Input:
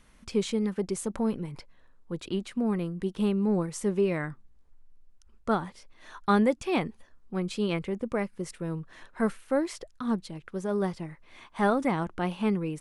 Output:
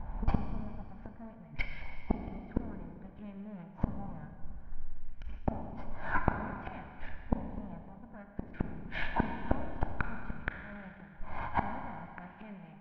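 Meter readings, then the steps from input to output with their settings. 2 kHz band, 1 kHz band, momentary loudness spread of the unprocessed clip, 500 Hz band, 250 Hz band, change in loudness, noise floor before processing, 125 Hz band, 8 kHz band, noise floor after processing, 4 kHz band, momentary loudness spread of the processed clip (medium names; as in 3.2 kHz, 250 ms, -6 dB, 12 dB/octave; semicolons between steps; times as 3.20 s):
-2.5 dB, -5.5 dB, 13 LU, -15.5 dB, -11.5 dB, -9.5 dB, -58 dBFS, -5.0 dB, under -35 dB, -52 dBFS, -13.0 dB, 14 LU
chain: comb filter that takes the minimum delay 1.3 ms; tilt EQ -1.5 dB/octave; in parallel at 0 dB: peak limiter -20 dBFS, peak gain reduction 9 dB; on the sum: LFO low-pass saw up 0.55 Hz 890–2500 Hz; inverted gate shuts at -21 dBFS, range -36 dB; steep low-pass 6 kHz; peaking EQ 480 Hz -6.5 dB 0.47 oct; band-stop 1.3 kHz, Q 7.3; Schroeder reverb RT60 2.2 s, combs from 27 ms, DRR 4.5 dB; trim +8 dB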